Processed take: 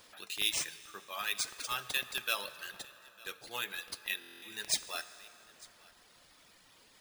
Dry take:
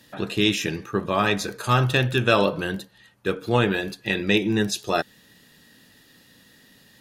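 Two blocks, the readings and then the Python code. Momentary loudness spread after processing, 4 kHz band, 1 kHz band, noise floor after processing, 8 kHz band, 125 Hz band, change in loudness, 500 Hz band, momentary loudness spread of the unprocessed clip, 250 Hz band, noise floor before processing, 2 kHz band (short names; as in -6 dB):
18 LU, -8.0 dB, -17.5 dB, -63 dBFS, -1.5 dB, -36.0 dB, -13.0 dB, -26.0 dB, 10 LU, -32.5 dB, -56 dBFS, -12.0 dB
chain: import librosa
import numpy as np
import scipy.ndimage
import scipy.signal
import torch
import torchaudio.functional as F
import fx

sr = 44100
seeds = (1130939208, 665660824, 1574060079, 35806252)

p1 = F.preemphasis(torch.from_numpy(x), 0.97).numpy()
p2 = fx.dereverb_blind(p1, sr, rt60_s=1.9)
p3 = scipy.signal.sosfilt(scipy.signal.butter(4, 100.0, 'highpass', fs=sr, output='sos'), p2)
p4 = fx.low_shelf(p3, sr, hz=350.0, db=-9.0)
p5 = p4 + fx.echo_single(p4, sr, ms=901, db=-23.5, dry=0)
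p6 = fx.rev_plate(p5, sr, seeds[0], rt60_s=4.2, hf_ratio=0.55, predelay_ms=0, drr_db=12.5)
p7 = np.repeat(p6[::3], 3)[:len(p6)]
y = fx.buffer_glitch(p7, sr, at_s=(4.19,), block=1024, repeats=9)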